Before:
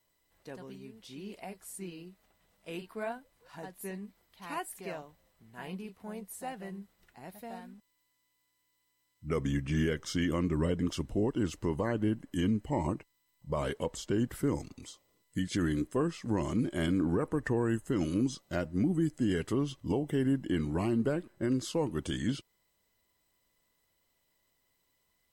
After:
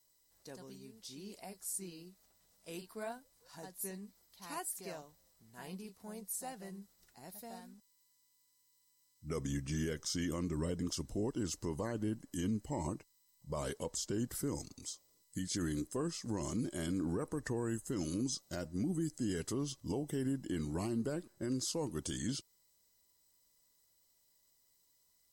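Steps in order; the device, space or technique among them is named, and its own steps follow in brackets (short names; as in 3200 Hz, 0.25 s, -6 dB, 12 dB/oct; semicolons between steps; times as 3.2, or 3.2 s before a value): over-bright horn tweeter (resonant high shelf 3800 Hz +10 dB, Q 1.5; limiter -22.5 dBFS, peak gain reduction 6 dB); gain -5.5 dB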